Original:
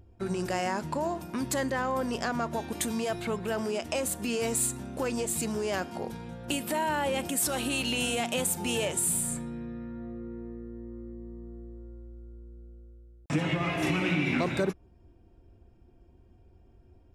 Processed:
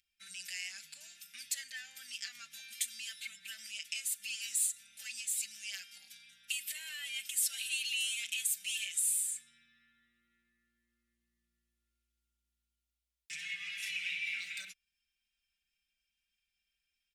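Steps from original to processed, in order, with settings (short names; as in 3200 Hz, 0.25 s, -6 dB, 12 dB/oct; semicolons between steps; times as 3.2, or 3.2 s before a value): inverse Chebyshev high-pass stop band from 1100 Hz, stop band 40 dB; comb 5.1 ms, depth 92%; in parallel at -2.5 dB: compressor, threshold -39 dBFS, peak gain reduction 16 dB; on the sum: gain -7 dB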